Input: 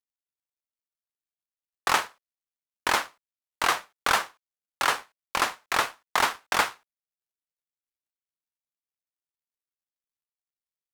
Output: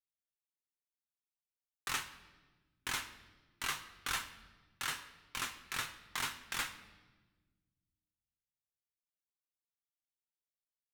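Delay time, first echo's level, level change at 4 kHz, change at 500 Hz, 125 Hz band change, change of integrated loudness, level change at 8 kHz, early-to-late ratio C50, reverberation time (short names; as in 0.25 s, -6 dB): none, none, -10.0 dB, -21.5 dB, -6.0 dB, -13.0 dB, -8.5 dB, 12.5 dB, 1.3 s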